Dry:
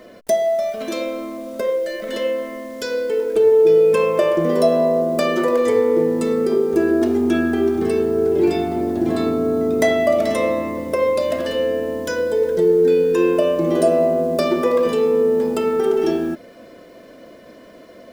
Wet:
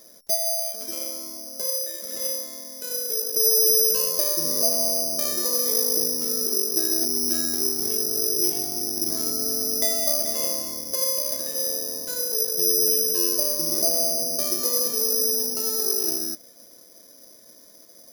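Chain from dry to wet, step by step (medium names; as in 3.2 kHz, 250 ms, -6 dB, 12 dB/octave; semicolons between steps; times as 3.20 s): careless resampling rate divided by 8×, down filtered, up zero stuff; trim -15.5 dB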